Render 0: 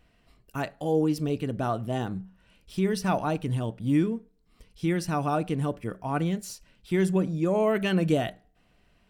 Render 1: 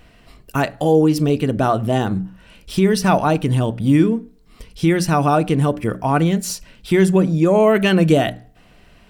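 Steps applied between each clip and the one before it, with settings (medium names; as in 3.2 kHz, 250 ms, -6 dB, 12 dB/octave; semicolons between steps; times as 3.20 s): hum notches 60/120/180/240/300 Hz; in parallel at +2 dB: compression, threshold -33 dBFS, peak gain reduction 13.5 dB; on the sum: trim +8 dB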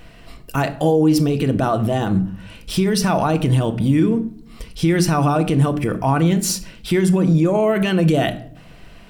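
peak limiter -14.5 dBFS, peak gain reduction 12 dB; simulated room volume 870 m³, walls furnished, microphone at 0.69 m; trim +4.5 dB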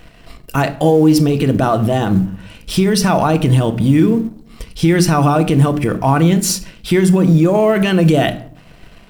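companding laws mixed up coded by A; trim +4.5 dB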